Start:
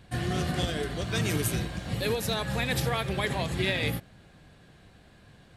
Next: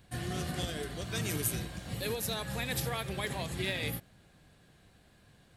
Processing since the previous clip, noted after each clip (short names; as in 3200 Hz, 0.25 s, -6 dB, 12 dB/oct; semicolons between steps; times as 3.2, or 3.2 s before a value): high shelf 7700 Hz +11 dB; gain -7 dB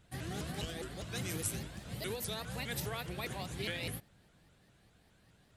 shaped vibrato saw up 4.9 Hz, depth 250 cents; gain -4.5 dB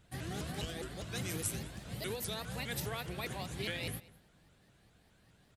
outdoor echo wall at 35 m, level -20 dB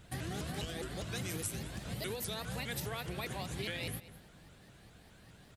compressor 2.5:1, threshold -48 dBFS, peak gain reduction 11 dB; gain +8 dB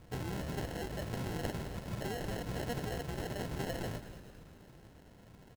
sample-and-hold 37×; frequency-shifting echo 0.217 s, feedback 57%, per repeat -67 Hz, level -14 dB; gain +1 dB